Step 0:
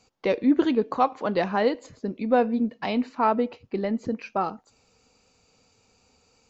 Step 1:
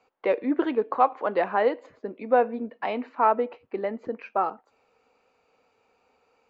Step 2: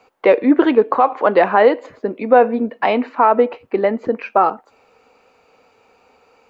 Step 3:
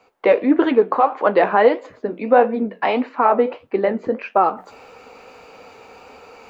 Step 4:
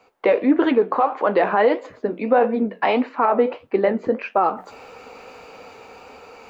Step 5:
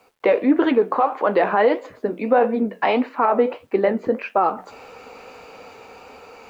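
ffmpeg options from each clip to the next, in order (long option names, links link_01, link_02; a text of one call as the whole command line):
ffmpeg -i in.wav -filter_complex "[0:a]acrossover=split=340 2600:gain=0.126 1 0.0708[link_01][link_02][link_03];[link_01][link_02][link_03]amix=inputs=3:normalize=0,volume=2dB" out.wav
ffmpeg -i in.wav -af "alimiter=level_in=13.5dB:limit=-1dB:release=50:level=0:latency=1,volume=-1dB" out.wav
ffmpeg -i in.wav -af "areverse,acompressor=mode=upward:threshold=-28dB:ratio=2.5,areverse,flanger=delay=9.9:depth=9.5:regen=-55:speed=1.6:shape=sinusoidal,volume=2dB" out.wav
ffmpeg -i in.wav -af "dynaudnorm=framelen=230:gausssize=11:maxgain=11.5dB,alimiter=limit=-7.5dB:level=0:latency=1:release=48" out.wav
ffmpeg -i in.wav -af "acrusher=bits=10:mix=0:aa=0.000001" out.wav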